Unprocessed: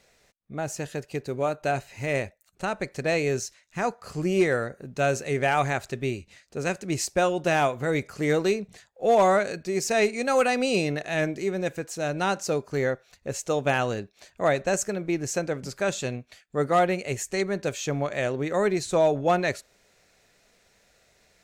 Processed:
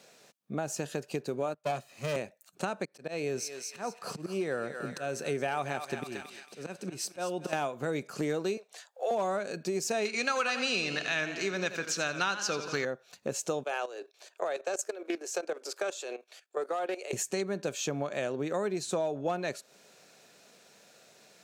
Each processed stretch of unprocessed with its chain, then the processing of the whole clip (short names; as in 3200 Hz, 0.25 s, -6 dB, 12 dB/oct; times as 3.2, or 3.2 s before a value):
1.54–2.16 minimum comb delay 1.6 ms + three-band expander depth 100%
2.85–7.53 notch 6900 Hz, Q 7.4 + auto swell 0.376 s + thinning echo 0.225 s, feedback 44%, high-pass 1100 Hz, level -8 dB
8.57–9.11 HPF 530 Hz 24 dB/oct + notch 2500 Hz, Q 26
10.05–12.85 band shelf 2600 Hz +13 dB 2.9 oct + warbling echo 86 ms, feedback 56%, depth 89 cents, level -12 dB
13.63–17.13 steep high-pass 350 Hz 48 dB/oct + level quantiser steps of 14 dB + Doppler distortion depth 0.1 ms
whole clip: HPF 150 Hz 24 dB/oct; bell 2000 Hz -8.5 dB 0.26 oct; compressor 4:1, threshold -36 dBFS; gain +5 dB